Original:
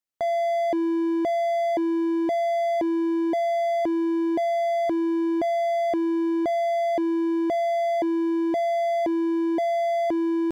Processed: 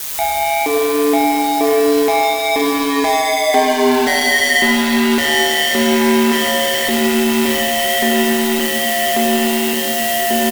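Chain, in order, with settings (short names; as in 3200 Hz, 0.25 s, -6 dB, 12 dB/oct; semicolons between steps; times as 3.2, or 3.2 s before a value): Doppler pass-by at 3.68, 33 m/s, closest 27 m; band shelf 2500 Hz +15 dB 1.1 oct; notches 50/100/150/200/250/300/350/400 Hz; comb 2.5 ms, depth 84%; in parallel at 0 dB: compressor, threshold -31 dBFS, peak gain reduction 12 dB; on the sum: thin delay 0.545 s, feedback 78%, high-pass 3000 Hz, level -5.5 dB; companded quantiser 4-bit; added noise blue -40 dBFS; fuzz box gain 42 dB, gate -41 dBFS; ring modulator 75 Hz; reverb RT60 2.5 s, pre-delay 13 ms, DRR -1.5 dB; gain -1 dB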